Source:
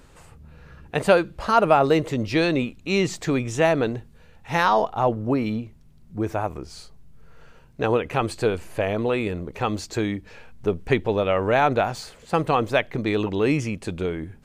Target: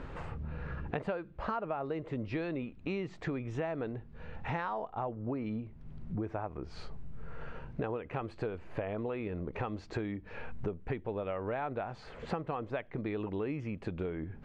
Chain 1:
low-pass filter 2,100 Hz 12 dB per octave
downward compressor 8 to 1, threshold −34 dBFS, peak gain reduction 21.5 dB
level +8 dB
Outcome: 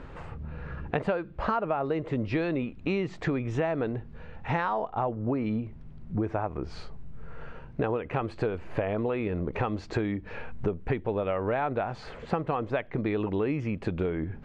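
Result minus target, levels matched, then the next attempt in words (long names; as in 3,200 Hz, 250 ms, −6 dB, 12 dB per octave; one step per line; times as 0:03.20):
downward compressor: peak gain reduction −7.5 dB
low-pass filter 2,100 Hz 12 dB per octave
downward compressor 8 to 1, threshold −42.5 dBFS, peak gain reduction 29 dB
level +8 dB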